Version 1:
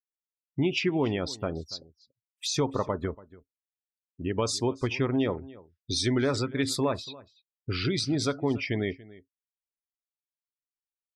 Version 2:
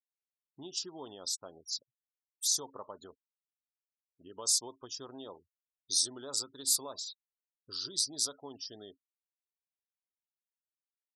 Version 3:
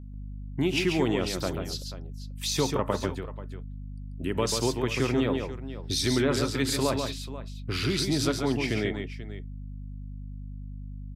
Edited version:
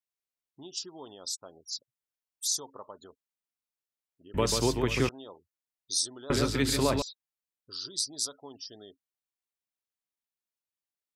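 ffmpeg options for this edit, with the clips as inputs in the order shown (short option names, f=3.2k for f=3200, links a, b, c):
-filter_complex "[2:a]asplit=2[a][b];[1:a]asplit=3[c][d][e];[c]atrim=end=4.342[f];[a]atrim=start=4.338:end=5.092[g];[d]atrim=start=5.088:end=6.302[h];[b]atrim=start=6.298:end=7.022[i];[e]atrim=start=7.018[j];[f][g]acrossfade=d=0.004:c1=hsin:c2=hsin[k];[k][h]acrossfade=d=0.004:c1=hsin:c2=hsin[l];[l][i]acrossfade=d=0.004:c1=hsin:c2=hsin[m];[m][j]acrossfade=d=0.004:c1=hsin:c2=hsin"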